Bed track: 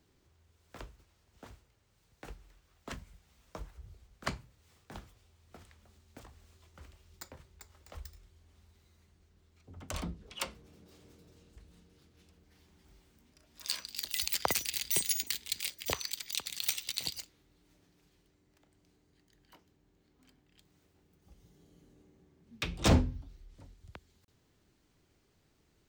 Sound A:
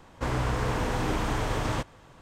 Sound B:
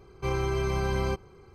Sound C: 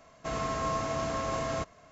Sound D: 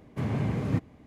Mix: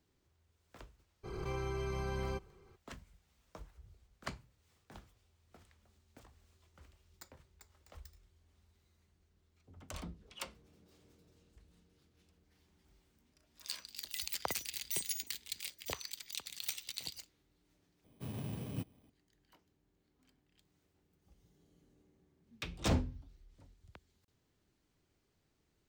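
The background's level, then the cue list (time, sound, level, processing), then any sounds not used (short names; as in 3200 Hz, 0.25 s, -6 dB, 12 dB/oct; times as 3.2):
bed track -7 dB
1.23 add B -10.5 dB, fades 0.02 s + backwards sustainer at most 33 dB/s
18.04 replace with D -13.5 dB + FFT order left unsorted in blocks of 16 samples
not used: A, C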